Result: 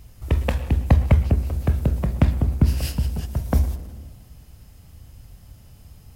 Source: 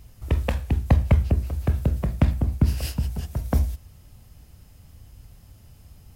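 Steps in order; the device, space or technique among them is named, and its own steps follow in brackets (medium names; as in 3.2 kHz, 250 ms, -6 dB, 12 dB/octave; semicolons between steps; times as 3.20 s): saturated reverb return (on a send at -9 dB: reverberation RT60 1.1 s, pre-delay 103 ms + saturation -24.5 dBFS, distortion -7 dB); on the sum: trim +2 dB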